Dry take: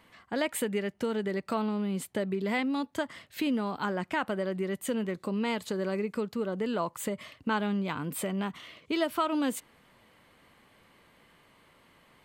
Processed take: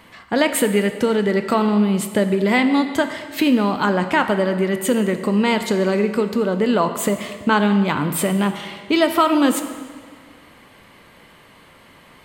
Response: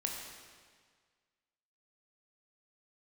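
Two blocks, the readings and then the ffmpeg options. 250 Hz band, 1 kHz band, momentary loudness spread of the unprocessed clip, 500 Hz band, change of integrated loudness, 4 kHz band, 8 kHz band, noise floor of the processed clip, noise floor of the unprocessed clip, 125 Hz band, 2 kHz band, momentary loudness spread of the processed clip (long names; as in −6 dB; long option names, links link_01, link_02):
+13.0 dB, +13.0 dB, 5 LU, +13.0 dB, +13.0 dB, +13.0 dB, +13.0 dB, −48 dBFS, −62 dBFS, +13.0 dB, +13.0 dB, 7 LU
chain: -filter_complex "[0:a]asplit=2[link_01][link_02];[1:a]atrim=start_sample=2205[link_03];[link_02][link_03]afir=irnorm=-1:irlink=0,volume=-2.5dB[link_04];[link_01][link_04]amix=inputs=2:normalize=0,volume=8dB"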